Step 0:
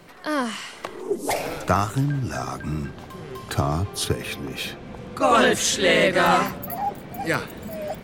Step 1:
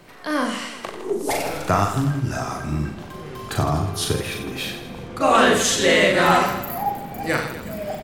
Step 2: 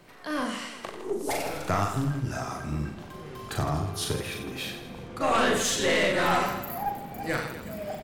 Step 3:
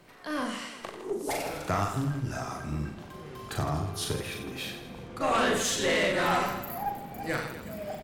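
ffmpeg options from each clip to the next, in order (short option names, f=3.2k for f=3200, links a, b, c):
-af "aecho=1:1:40|92|159.6|247.5|361.7:0.631|0.398|0.251|0.158|0.1"
-af "aeval=exprs='(tanh(3.98*val(0)+0.35)-tanh(0.35))/3.98':c=same,volume=-5dB"
-af "volume=-2dB" -ar 48000 -c:a libopus -b:a 256k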